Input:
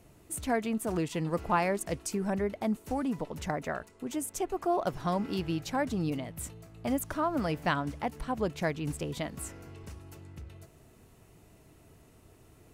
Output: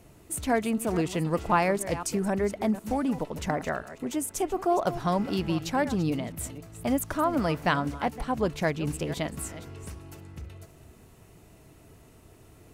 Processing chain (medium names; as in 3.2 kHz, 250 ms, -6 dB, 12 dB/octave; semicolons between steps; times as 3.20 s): chunks repeated in reverse 254 ms, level -13.5 dB; trim +4 dB